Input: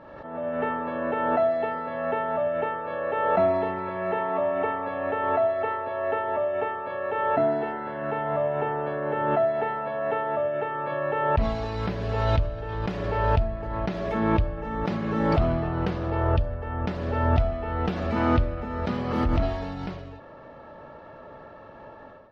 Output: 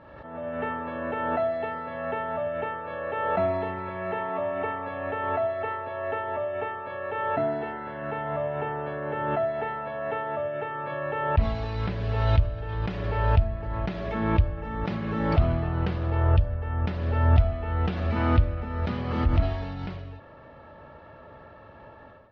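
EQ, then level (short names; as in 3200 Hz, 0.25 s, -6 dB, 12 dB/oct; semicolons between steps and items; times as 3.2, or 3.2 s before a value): LPF 3300 Hz 12 dB/oct; bell 76 Hz +10 dB 1.7 oct; high shelf 2300 Hz +11 dB; -5.0 dB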